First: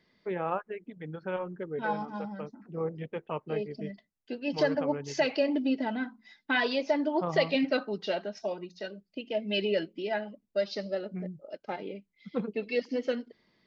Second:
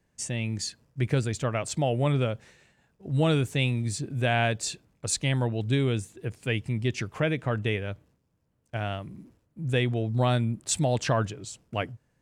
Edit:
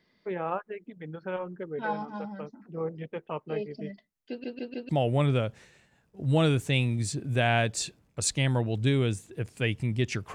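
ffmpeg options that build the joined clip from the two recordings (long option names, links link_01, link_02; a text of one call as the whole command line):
ffmpeg -i cue0.wav -i cue1.wav -filter_complex "[0:a]apad=whole_dur=10.34,atrim=end=10.34,asplit=4[link_01][link_02][link_03][link_04];[link_01]atrim=end=4.442[link_05];[link_02]atrim=start=4.288:end=4.442[link_06];[link_03]atrim=start=4.288:end=4.442[link_07];[link_04]atrim=start=4.288:end=4.442[link_08];[1:a]atrim=start=1.748:end=7.2[link_09];[link_05][link_06]acrossfade=duration=0.004:curve1=hsin:curve2=hsin[link_10];[link_10][link_07]acrossfade=duration=0.004:curve1=hsin:curve2=hsin[link_11];[link_11][link_08]acrossfade=duration=0.004:curve1=hsin:curve2=hsin[link_12];[link_12][link_09]acrossfade=duration=0.004:curve1=hsin:curve2=hsin" out.wav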